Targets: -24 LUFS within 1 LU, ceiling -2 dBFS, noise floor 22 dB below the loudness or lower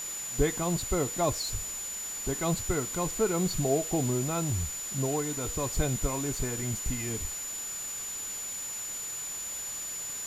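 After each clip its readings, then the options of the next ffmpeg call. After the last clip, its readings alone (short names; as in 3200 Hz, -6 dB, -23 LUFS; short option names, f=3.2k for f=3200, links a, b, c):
steady tone 7000 Hz; tone level -35 dBFS; noise floor -37 dBFS; noise floor target -53 dBFS; loudness -30.5 LUFS; peak -12.5 dBFS; loudness target -24.0 LUFS
-> -af "bandreject=f=7k:w=30"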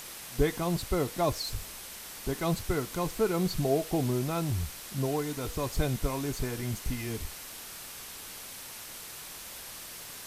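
steady tone none; noise floor -44 dBFS; noise floor target -55 dBFS
-> -af "afftdn=nr=11:nf=-44"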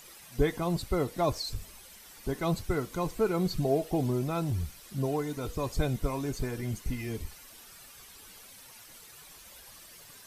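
noise floor -52 dBFS; noise floor target -54 dBFS
-> -af "afftdn=nr=6:nf=-52"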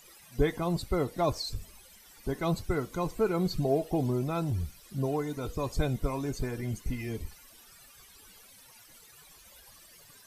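noise floor -56 dBFS; loudness -32.0 LUFS; peak -13.5 dBFS; loudness target -24.0 LUFS
-> -af "volume=8dB"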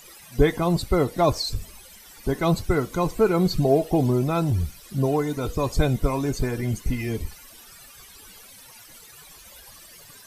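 loudness -24.0 LUFS; peak -5.5 dBFS; noise floor -48 dBFS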